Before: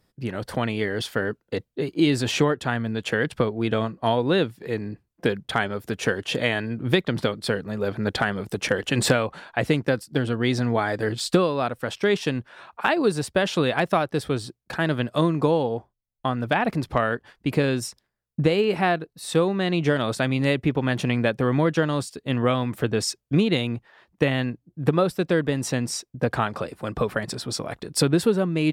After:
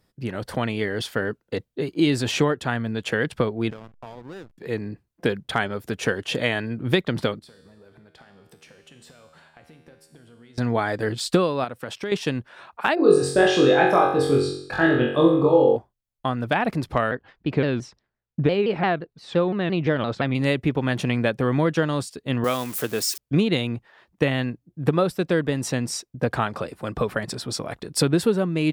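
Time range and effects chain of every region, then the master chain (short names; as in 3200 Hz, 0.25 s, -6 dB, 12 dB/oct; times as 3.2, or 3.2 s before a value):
3.7–4.58 bell 1300 Hz +5.5 dB 1.3 oct + compressor 5:1, threshold -36 dBFS + backlash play -35 dBFS
7.39–10.58 compressor 16:1, threshold -34 dBFS + resonator 79 Hz, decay 1.3 s, mix 80%
11.64–12.12 HPF 88 Hz + compressor 2.5:1, threshold -29 dBFS
12.95–15.76 formant sharpening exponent 1.5 + doubler 24 ms -5 dB + flutter echo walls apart 3.7 m, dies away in 0.64 s
17.11–20.35 air absorption 180 m + shaped vibrato saw down 5.8 Hz, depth 160 cents
22.44–23.18 switching spikes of -25 dBFS + HPF 330 Hz 6 dB/oct
whole clip: dry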